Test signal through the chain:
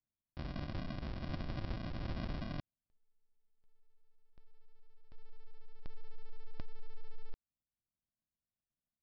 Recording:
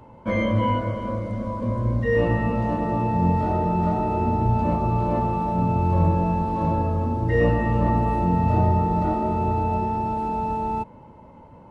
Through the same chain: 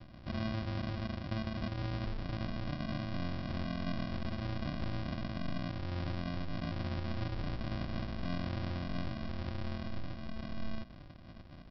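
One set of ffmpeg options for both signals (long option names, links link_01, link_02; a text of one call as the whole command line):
ffmpeg -i in.wav -af "alimiter=limit=-17.5dB:level=0:latency=1:release=174,acompressor=threshold=-29dB:ratio=6,aresample=11025,acrusher=samples=25:mix=1:aa=0.000001,aresample=44100,volume=-4.5dB" out.wav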